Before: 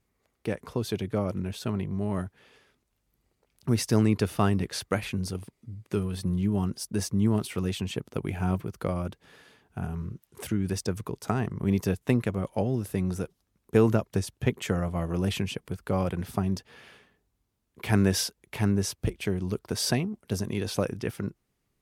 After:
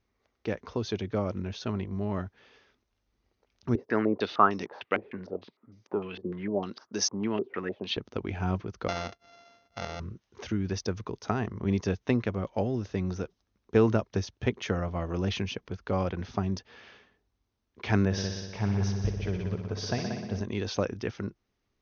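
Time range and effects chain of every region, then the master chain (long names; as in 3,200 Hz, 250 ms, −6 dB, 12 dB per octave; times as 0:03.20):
0:03.75–0:07.97: high-pass filter 260 Hz + low-pass on a step sequencer 6.6 Hz 410–5,800 Hz
0:08.88–0:10.00: samples sorted by size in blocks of 64 samples + low-shelf EQ 170 Hz −8.5 dB
0:18.05–0:20.41: drawn EQ curve 180 Hz 0 dB, 280 Hz −8 dB, 560 Hz −1 dB, 7,700 Hz −9 dB + echo machine with several playback heads 61 ms, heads all three, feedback 55%, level −9.5 dB + one half of a high-frequency compander decoder only
whole clip: Chebyshev low-pass filter 6,400 Hz, order 8; parametric band 150 Hz −13 dB 0.27 octaves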